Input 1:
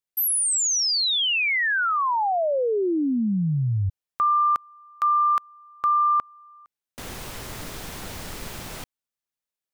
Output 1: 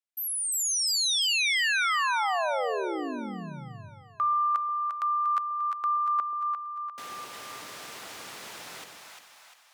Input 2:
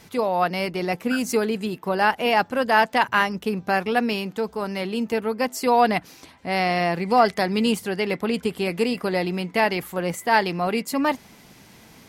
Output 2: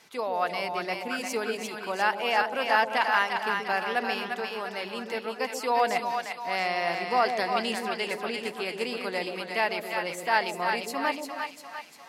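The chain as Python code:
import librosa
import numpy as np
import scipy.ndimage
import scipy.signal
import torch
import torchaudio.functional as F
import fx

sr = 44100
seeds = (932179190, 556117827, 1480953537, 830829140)

y = fx.weighting(x, sr, curve='A')
y = fx.echo_split(y, sr, split_hz=670.0, low_ms=131, high_ms=349, feedback_pct=52, wet_db=-4.5)
y = F.gain(torch.from_numpy(y), -5.5).numpy()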